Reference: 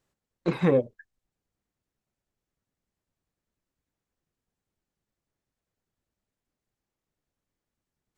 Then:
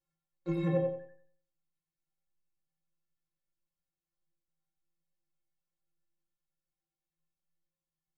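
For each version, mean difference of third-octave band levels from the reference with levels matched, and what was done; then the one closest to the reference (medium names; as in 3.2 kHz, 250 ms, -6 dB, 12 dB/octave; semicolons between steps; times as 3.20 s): 7.5 dB: bass shelf 77 Hz +11 dB; inharmonic resonator 160 Hz, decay 0.44 s, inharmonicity 0.03; on a send: filtered feedback delay 91 ms, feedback 32%, low-pass 3.6 kHz, level -3.5 dB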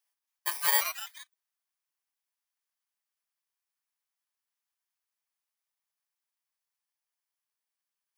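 23.5 dB: bit-reversed sample order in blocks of 32 samples; high-pass 870 Hz 24 dB/octave; ever faster or slower copies 277 ms, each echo +4 st, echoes 3, each echo -6 dB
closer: first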